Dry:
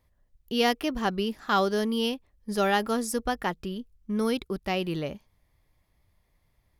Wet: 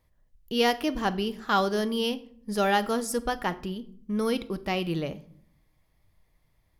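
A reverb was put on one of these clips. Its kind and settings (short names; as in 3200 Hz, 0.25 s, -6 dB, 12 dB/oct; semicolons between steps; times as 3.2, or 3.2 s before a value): shoebox room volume 860 m³, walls furnished, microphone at 0.59 m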